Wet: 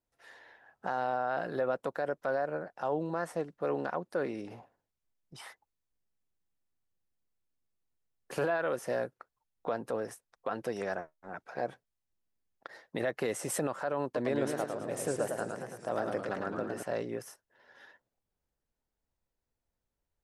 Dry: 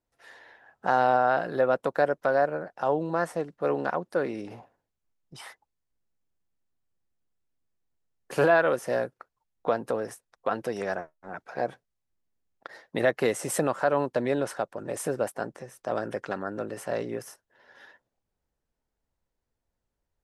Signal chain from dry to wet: limiter -18 dBFS, peak gain reduction 8.5 dB; 14.03–16.83 warbling echo 0.109 s, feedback 56%, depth 173 cents, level -4.5 dB; gain -4 dB

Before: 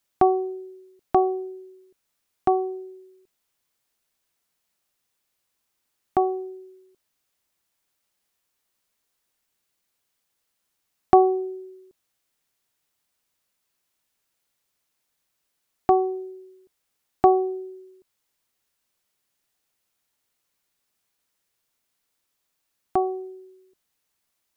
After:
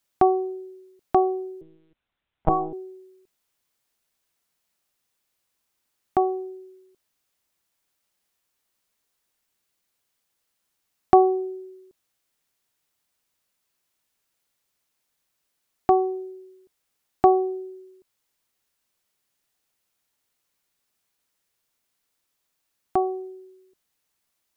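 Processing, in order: 1.61–2.73 monotone LPC vocoder at 8 kHz 160 Hz

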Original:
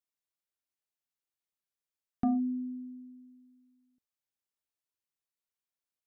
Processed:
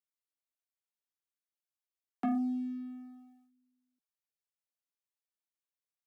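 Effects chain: steep high-pass 150 Hz 96 dB/oct; low shelf 200 Hz -10 dB; sample leveller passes 2; gain -3 dB

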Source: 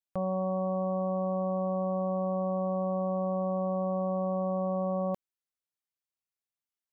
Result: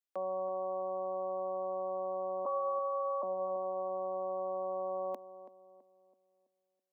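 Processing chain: 2.45–3.23 sine-wave speech; steep high-pass 250 Hz 48 dB/oct; darkening echo 0.329 s, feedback 45%, low-pass 1000 Hz, level -12 dB; gain -3.5 dB

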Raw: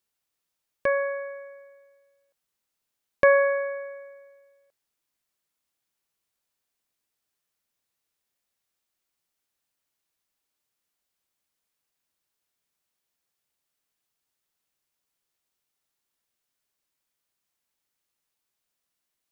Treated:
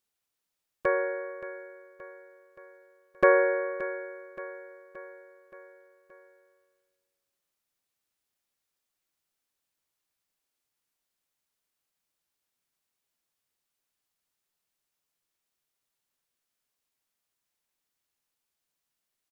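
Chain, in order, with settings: harmoniser -7 st -7 dB, -3 st -7 dB; feedback echo 0.574 s, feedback 55%, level -14.5 dB; gain -3.5 dB

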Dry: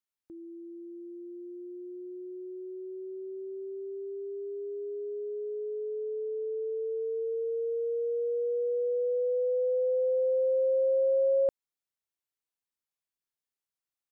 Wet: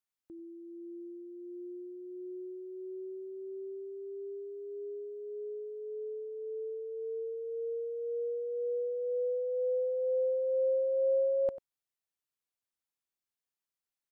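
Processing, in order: outdoor echo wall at 16 m, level -15 dB; dynamic EQ 440 Hz, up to -4 dB, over -42 dBFS, Q 3.5; gain -2 dB

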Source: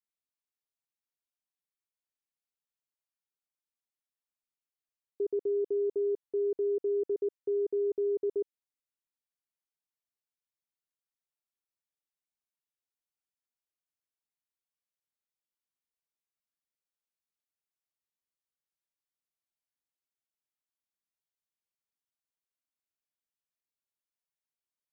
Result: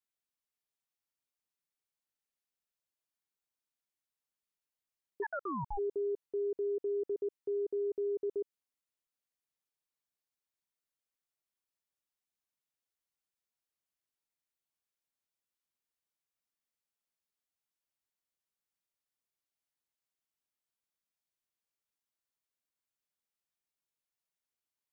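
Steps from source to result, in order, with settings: limiter -30 dBFS, peak gain reduction 4.5 dB; 5.22–5.77 ring modulator 1400 Hz -> 390 Hz

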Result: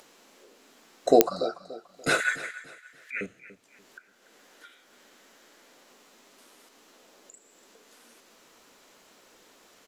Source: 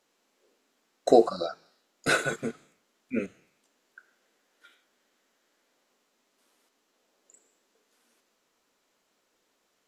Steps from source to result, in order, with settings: upward compressor, threshold -43 dBFS; 2.2–3.21 resonant high-pass 1800 Hz, resonance Q 7.3; feedback echo 0.289 s, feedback 34%, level -16 dB; pops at 1.21, 0 dBFS

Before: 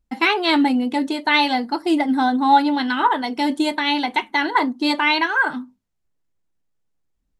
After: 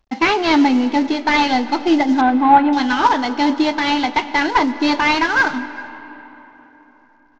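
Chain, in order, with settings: CVSD 32 kbps; 2.21–2.73 LPF 2600 Hz 24 dB/oct; echo 0.395 s -23.5 dB; reverb RT60 4.0 s, pre-delay 60 ms, DRR 14 dB; gain +4 dB

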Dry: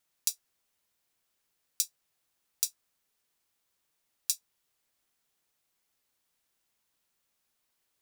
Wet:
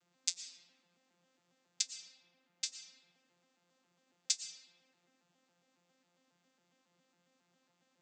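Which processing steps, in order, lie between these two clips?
arpeggiated vocoder bare fifth, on F3, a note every 0.137 s; 1.81–2.66 high shelf 5900 Hz -11.5 dB; reverb RT60 1.9 s, pre-delay 75 ms, DRR 8 dB

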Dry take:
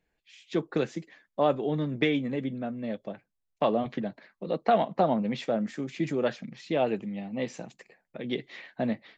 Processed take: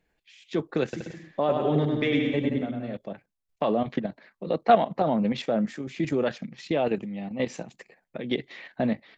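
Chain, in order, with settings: high shelf 6600 Hz -3 dB; level quantiser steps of 10 dB; 0.83–2.97 bouncing-ball echo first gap 0.1 s, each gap 0.75×, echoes 5; gain +6.5 dB

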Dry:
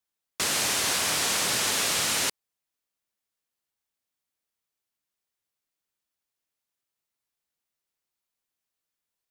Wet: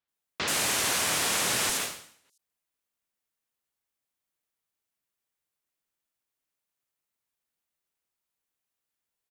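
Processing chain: 1.69–2.25 tube stage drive 20 dB, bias 0.65; bands offset in time lows, highs 80 ms, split 4800 Hz; ending taper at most 100 dB/s

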